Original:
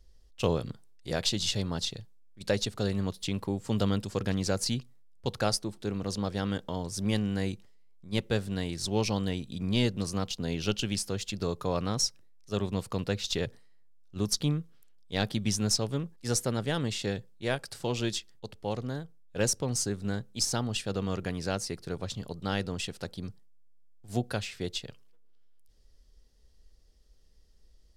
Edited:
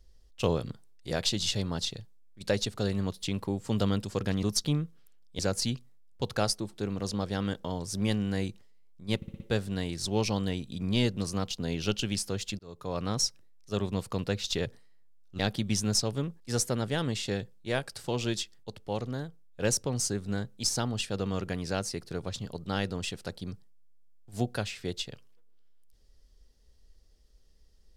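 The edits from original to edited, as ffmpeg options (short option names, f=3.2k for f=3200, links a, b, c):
-filter_complex "[0:a]asplit=9[a][b][c][d][e][f][g][h][i];[a]atrim=end=4.432[j];[b]atrim=start=14.188:end=15.152[k];[c]atrim=start=4.428:end=8.262[l];[d]atrim=start=8.198:end=8.262[m];[e]atrim=start=8.198:end=8.262[n];[f]atrim=start=8.198:end=8.262[o];[g]atrim=start=8.198:end=11.39,asetpts=PTS-STARTPTS,afade=t=out:st=3.188:d=0.004:c=hsin[p];[h]atrim=start=11.39:end=14.192,asetpts=PTS-STARTPTS,afade=t=in:d=0.53[q];[i]atrim=start=15.148[r];[j][k]acrossfade=d=0.004:c1=hsin:c2=hsin[s];[s][l]acrossfade=d=0.004:c1=hsin:c2=hsin[t];[t][m]acrossfade=d=0.004:c1=hsin:c2=hsin[u];[u][n]acrossfade=d=0.004:c1=hsin:c2=hsin[v];[v][o]acrossfade=d=0.004:c1=hsin:c2=hsin[w];[p][q]concat=n=2:v=0:a=1[x];[w][x]acrossfade=d=0.004:c1=hsin:c2=hsin[y];[y][r]acrossfade=d=0.004:c1=hsin:c2=hsin"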